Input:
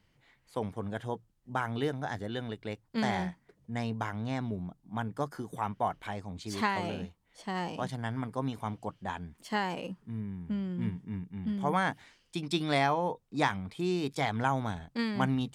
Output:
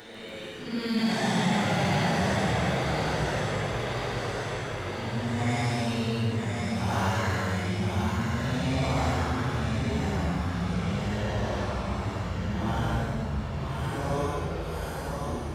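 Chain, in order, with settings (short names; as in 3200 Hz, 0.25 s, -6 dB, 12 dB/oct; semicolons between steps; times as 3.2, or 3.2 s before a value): Doppler pass-by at 3.75, 11 m/s, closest 11 m; low shelf 82 Hz +9.5 dB; thinning echo 0.173 s, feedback 69%, high-pass 460 Hz, level -4 dB; Paulstretch 5.9×, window 0.10 s, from 2.74; echoes that change speed 0.145 s, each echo -4 st, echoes 3; in parallel at -7 dB: hard clip -27.5 dBFS, distortion -13 dB; on the sum: high shelf 4300 Hz +11 dB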